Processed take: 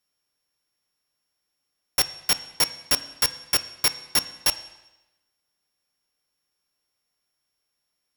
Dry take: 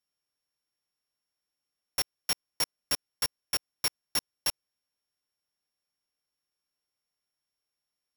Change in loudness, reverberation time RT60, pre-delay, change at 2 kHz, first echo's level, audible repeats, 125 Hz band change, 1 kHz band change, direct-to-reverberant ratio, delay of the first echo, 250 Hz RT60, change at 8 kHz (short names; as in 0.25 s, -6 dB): +8.0 dB, 1.0 s, 8 ms, +8.5 dB, none, none, +8.5 dB, +8.0 dB, 12.0 dB, none, 1.0 s, +8.0 dB